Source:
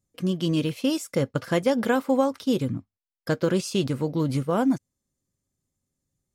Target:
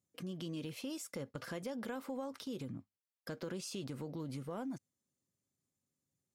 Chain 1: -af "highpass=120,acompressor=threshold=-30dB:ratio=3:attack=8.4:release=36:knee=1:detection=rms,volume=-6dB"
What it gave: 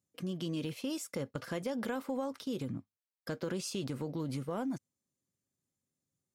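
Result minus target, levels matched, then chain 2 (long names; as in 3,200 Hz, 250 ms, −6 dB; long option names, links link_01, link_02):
downward compressor: peak gain reduction −5.5 dB
-af "highpass=120,acompressor=threshold=-38.5dB:ratio=3:attack=8.4:release=36:knee=1:detection=rms,volume=-6dB"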